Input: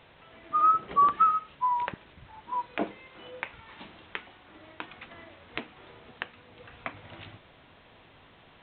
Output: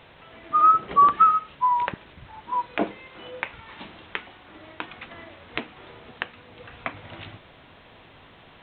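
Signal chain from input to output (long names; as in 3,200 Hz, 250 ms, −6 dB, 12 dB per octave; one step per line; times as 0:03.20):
level +5.5 dB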